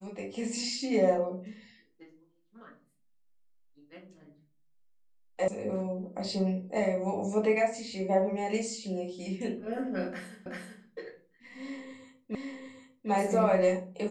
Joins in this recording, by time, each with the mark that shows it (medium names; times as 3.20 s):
5.48 s: sound stops dead
10.46 s: repeat of the last 0.38 s
12.35 s: repeat of the last 0.75 s